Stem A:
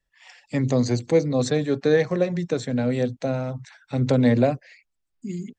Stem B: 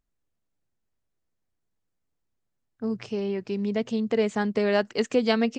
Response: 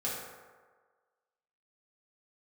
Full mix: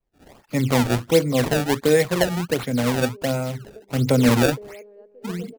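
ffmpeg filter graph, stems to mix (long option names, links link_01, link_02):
-filter_complex "[0:a]bandreject=frequency=1700:width=8.8,adynamicequalizer=threshold=0.00794:dfrequency=2400:dqfactor=0.86:tfrequency=2400:tqfactor=0.86:attack=5:release=100:ratio=0.375:range=3:mode=boostabove:tftype=bell,acrusher=samples=24:mix=1:aa=0.000001:lfo=1:lforange=38.4:lforate=1.4,volume=1.5dB,asplit=2[link_01][link_02];[1:a]deesser=0.8,bandpass=frequency=460:width_type=q:width=3.6:csg=0,volume=-11.5dB,asplit=2[link_03][link_04];[link_04]volume=-8dB[link_05];[link_02]apad=whole_len=246203[link_06];[link_03][link_06]sidechaingate=range=-13dB:threshold=-49dB:ratio=16:detection=peak[link_07];[link_05]aecho=0:1:242|484|726|968|1210:1|0.32|0.102|0.0328|0.0105[link_08];[link_01][link_07][link_08]amix=inputs=3:normalize=0"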